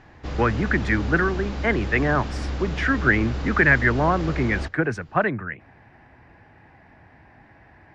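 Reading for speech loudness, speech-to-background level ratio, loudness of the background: −22.5 LKFS, 8.0 dB, −30.5 LKFS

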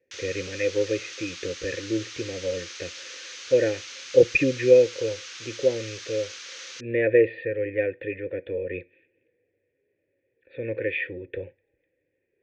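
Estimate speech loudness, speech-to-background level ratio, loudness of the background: −25.5 LKFS, 12.5 dB, −38.0 LKFS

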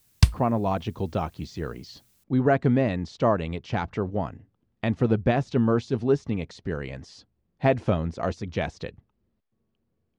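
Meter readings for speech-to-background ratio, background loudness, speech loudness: −3.0 dB, −23.5 LKFS, −26.5 LKFS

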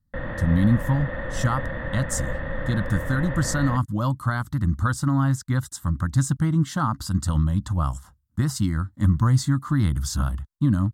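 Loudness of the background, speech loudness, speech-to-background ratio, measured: −31.5 LKFS, −24.0 LKFS, 7.5 dB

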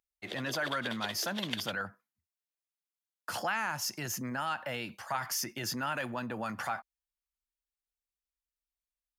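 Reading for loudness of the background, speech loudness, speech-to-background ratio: −40.0 LKFS, −35.5 LKFS, 4.5 dB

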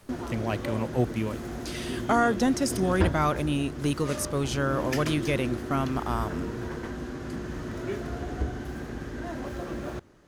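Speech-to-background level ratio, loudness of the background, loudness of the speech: 6.0 dB, −34.5 LKFS, −28.5 LKFS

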